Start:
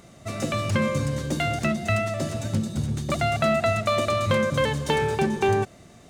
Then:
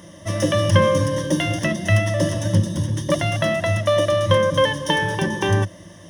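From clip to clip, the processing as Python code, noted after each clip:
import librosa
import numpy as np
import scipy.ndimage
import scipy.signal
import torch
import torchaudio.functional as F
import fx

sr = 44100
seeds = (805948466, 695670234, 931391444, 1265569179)

y = fx.ripple_eq(x, sr, per_octave=1.2, db=16)
y = fx.rider(y, sr, range_db=4, speed_s=2.0)
y = scipy.signal.sosfilt(scipy.signal.butter(2, 62.0, 'highpass', fs=sr, output='sos'), y)
y = F.gain(torch.from_numpy(y), 2.0).numpy()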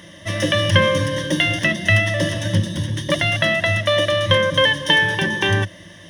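y = fx.band_shelf(x, sr, hz=2600.0, db=9.0, octaves=1.7)
y = F.gain(torch.from_numpy(y), -1.0).numpy()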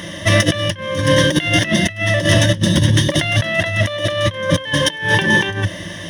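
y = fx.over_compress(x, sr, threshold_db=-23.0, ratio=-0.5)
y = F.gain(torch.from_numpy(y), 7.5).numpy()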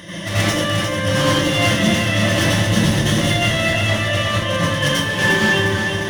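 y = np.clip(x, -10.0 ** (-14.0 / 20.0), 10.0 ** (-14.0 / 20.0))
y = fx.echo_feedback(y, sr, ms=354, feedback_pct=58, wet_db=-6.0)
y = fx.rev_plate(y, sr, seeds[0], rt60_s=0.61, hf_ratio=0.7, predelay_ms=75, drr_db=-8.5)
y = F.gain(torch.from_numpy(y), -8.0).numpy()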